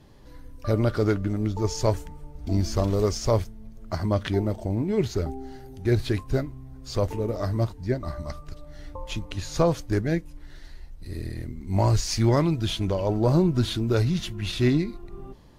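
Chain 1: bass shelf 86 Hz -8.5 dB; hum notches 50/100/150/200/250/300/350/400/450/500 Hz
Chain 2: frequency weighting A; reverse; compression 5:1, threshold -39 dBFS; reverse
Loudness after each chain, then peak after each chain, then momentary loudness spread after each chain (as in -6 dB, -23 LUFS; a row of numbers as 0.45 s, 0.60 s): -28.0 LUFS, -43.0 LUFS; -9.5 dBFS, -22.5 dBFS; 15 LU, 11 LU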